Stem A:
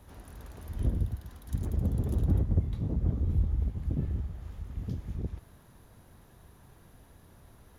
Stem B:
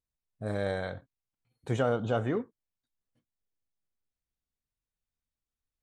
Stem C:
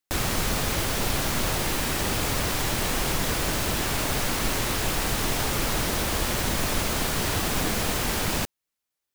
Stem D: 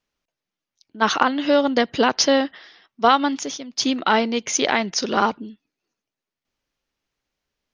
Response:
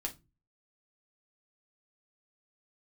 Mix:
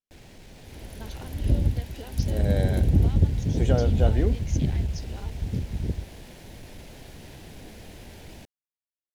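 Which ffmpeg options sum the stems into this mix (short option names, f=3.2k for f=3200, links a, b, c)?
-filter_complex "[0:a]adelay=650,volume=3dB[a];[1:a]adelay=1900,volume=-0.5dB[b];[2:a]aemphasis=mode=reproduction:type=50kf,asoftclip=type=tanh:threshold=-20.5dB,volume=-19dB[c];[3:a]acompressor=threshold=-28dB:ratio=2.5,volume=-18dB[d];[a][b][c][d]amix=inputs=4:normalize=0,equalizer=f=1.2k:t=o:w=0.65:g=-14,dynaudnorm=f=180:g=7:m=3.5dB"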